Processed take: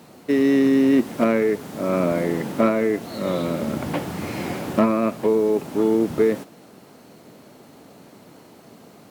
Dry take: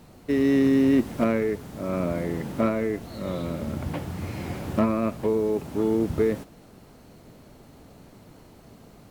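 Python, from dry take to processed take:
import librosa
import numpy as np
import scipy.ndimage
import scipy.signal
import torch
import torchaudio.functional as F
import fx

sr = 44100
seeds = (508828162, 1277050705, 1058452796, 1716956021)

p1 = scipy.signal.sosfilt(scipy.signal.butter(2, 190.0, 'highpass', fs=sr, output='sos'), x)
p2 = fx.rider(p1, sr, range_db=4, speed_s=0.5)
p3 = p1 + (p2 * librosa.db_to_amplitude(1.0))
y = p3 * librosa.db_to_amplitude(-1.0)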